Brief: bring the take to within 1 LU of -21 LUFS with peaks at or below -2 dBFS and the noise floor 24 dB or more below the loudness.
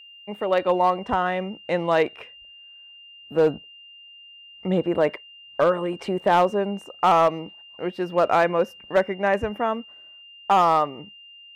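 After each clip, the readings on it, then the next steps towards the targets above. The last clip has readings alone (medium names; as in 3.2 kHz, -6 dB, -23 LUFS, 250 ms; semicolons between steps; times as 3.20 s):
clipped samples 0.5%; clipping level -11.0 dBFS; steady tone 2.8 kHz; tone level -44 dBFS; loudness -23.0 LUFS; peak level -11.0 dBFS; loudness target -21.0 LUFS
-> clip repair -11 dBFS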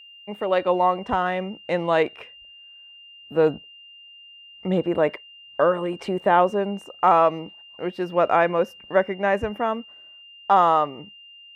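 clipped samples 0.0%; steady tone 2.8 kHz; tone level -44 dBFS
-> band-stop 2.8 kHz, Q 30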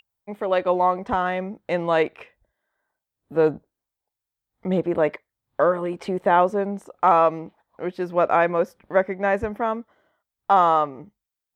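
steady tone not found; loudness -22.5 LUFS; peak level -5.0 dBFS; loudness target -21.0 LUFS
-> trim +1.5 dB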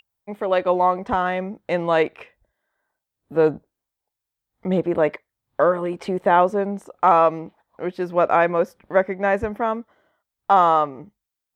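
loudness -21.0 LUFS; peak level -3.5 dBFS; noise floor -85 dBFS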